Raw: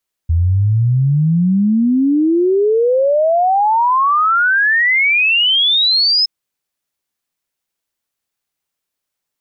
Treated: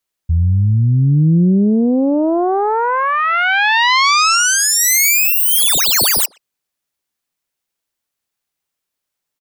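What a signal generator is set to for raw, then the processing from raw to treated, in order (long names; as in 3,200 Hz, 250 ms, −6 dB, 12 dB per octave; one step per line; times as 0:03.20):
exponential sine sweep 80 Hz → 5,200 Hz 5.97 s −10 dBFS
phase distortion by the signal itself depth 0.47 ms
dynamic equaliser 170 Hz, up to +3 dB, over −26 dBFS, Q 2
far-end echo of a speakerphone 120 ms, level −23 dB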